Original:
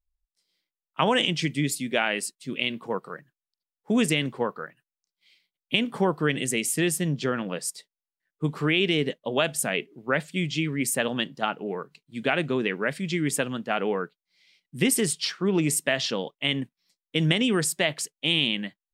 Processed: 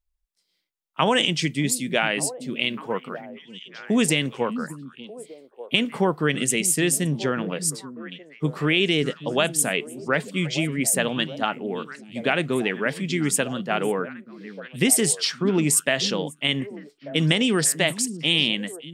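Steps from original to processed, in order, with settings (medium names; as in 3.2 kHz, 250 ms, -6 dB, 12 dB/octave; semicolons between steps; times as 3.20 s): dynamic bell 8 kHz, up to +5 dB, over -41 dBFS, Q 0.78; on a send: repeats whose band climbs or falls 594 ms, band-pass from 210 Hz, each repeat 1.4 oct, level -8.5 dB; on the sum: trim +2 dB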